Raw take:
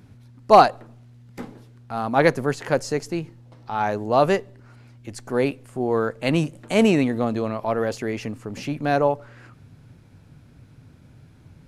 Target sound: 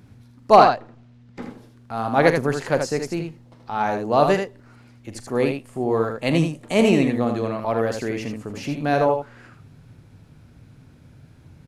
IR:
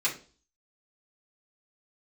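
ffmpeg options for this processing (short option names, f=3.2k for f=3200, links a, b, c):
-filter_complex "[0:a]asettb=1/sr,asplit=3[a][b][c];[a]atrim=end=0.564[d];[b]atrim=start=0.56:end=1.42,asetpts=PTS-STARTPTS,afade=t=in:d=0.004:c=qsin,afade=t=out:st=0.856:d=0.004:c=qsin,lowpass=5.1k[e];[c]atrim=start=1.416[f];[d][e]acrossfade=d=0.004:c1=hsin:c2=qsin[g];[g][f]acrossfade=d=0.004:c1=qsin:c2=hsin,asettb=1/sr,asplit=3[h][i][j];[h]atrim=end=5.254[k];[i]atrim=start=5.25:end=7.13,asetpts=PTS-STARTPTS,afade=t=in:d=0.004:c=qsin,afade=t=out:st=1.876:d=0.004:c=qsin,bandreject=f=1.5k:w=9.7[l];[j]atrim=start=7.126[m];[k][l]acrossfade=d=0.004:c1=hsin:c2=qsin[n];[n][m]acrossfade=d=0.004:c1=qsin:c2=hsin,aecho=1:1:42|79:0.2|0.501"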